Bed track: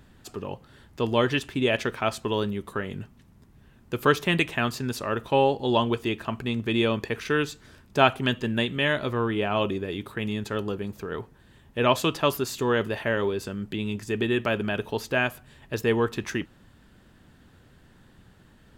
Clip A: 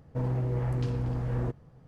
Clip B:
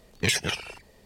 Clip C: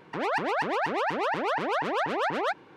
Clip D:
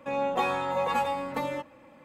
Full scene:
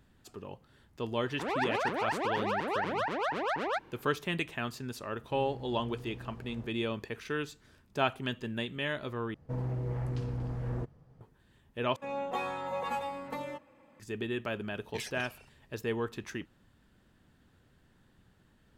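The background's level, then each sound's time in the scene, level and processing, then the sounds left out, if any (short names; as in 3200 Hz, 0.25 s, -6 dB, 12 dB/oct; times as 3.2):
bed track -10 dB
1.26 add C -4.5 dB
5.16 add A -18 dB + per-bin compression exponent 0.6
9.34 replace with A -5 dB
11.96 replace with D -7.5 dB
14.71 add B -17 dB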